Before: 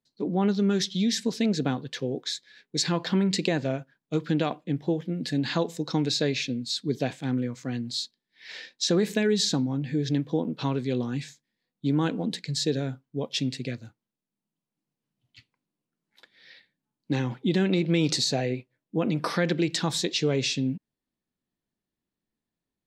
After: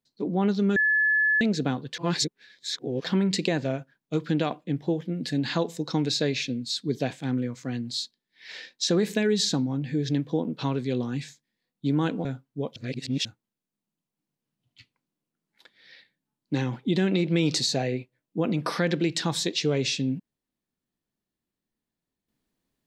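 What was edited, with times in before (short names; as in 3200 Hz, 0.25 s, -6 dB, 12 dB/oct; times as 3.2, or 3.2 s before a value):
0.76–1.41 bleep 1720 Hz -19 dBFS
1.98–3.04 reverse
12.25–12.83 cut
13.34–13.83 reverse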